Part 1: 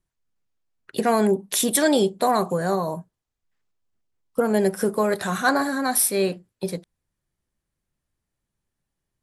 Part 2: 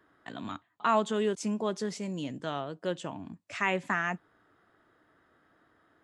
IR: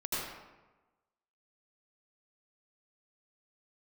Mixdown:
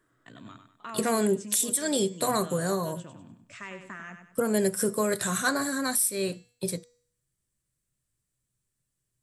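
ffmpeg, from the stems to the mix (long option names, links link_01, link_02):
-filter_complex "[0:a]highshelf=frequency=4400:gain=8.5,bandreject=frequency=242:width_type=h:width=4,bandreject=frequency=484:width_type=h:width=4,bandreject=frequency=726:width_type=h:width=4,bandreject=frequency=968:width_type=h:width=4,bandreject=frequency=1210:width_type=h:width=4,bandreject=frequency=1452:width_type=h:width=4,bandreject=frequency=1694:width_type=h:width=4,bandreject=frequency=1936:width_type=h:width=4,bandreject=frequency=2178:width_type=h:width=4,bandreject=frequency=2420:width_type=h:width=4,bandreject=frequency=2662:width_type=h:width=4,bandreject=frequency=2904:width_type=h:width=4,bandreject=frequency=3146:width_type=h:width=4,bandreject=frequency=3388:width_type=h:width=4,bandreject=frequency=3630:width_type=h:width=4,bandreject=frequency=3872:width_type=h:width=4,bandreject=frequency=4114:width_type=h:width=4,bandreject=frequency=4356:width_type=h:width=4,bandreject=frequency=4598:width_type=h:width=4,bandreject=frequency=4840:width_type=h:width=4,bandreject=frequency=5082:width_type=h:width=4,bandreject=frequency=5324:width_type=h:width=4,bandreject=frequency=5566:width_type=h:width=4,bandreject=frequency=5808:width_type=h:width=4,bandreject=frequency=6050:width_type=h:width=4,bandreject=frequency=6292:width_type=h:width=4,bandreject=frequency=6534:width_type=h:width=4,bandreject=frequency=6776:width_type=h:width=4,bandreject=frequency=7018:width_type=h:width=4,bandreject=frequency=7260:width_type=h:width=4,bandreject=frequency=7502:width_type=h:width=4,bandreject=frequency=7744:width_type=h:width=4,bandreject=frequency=7986:width_type=h:width=4,volume=-4.5dB[link_01];[1:a]acompressor=threshold=-42dB:ratio=1.5,volume=-5.5dB,asplit=2[link_02][link_03];[link_03]volume=-8dB,aecho=0:1:98|196|294|392|490:1|0.36|0.13|0.0467|0.0168[link_04];[link_01][link_02][link_04]amix=inputs=3:normalize=0,equalizer=frequency=125:width_type=o:width=0.33:gain=11,equalizer=frequency=800:width_type=o:width=0.33:gain=-9,equalizer=frequency=8000:width_type=o:width=0.33:gain=9,alimiter=limit=-14dB:level=0:latency=1:release=318"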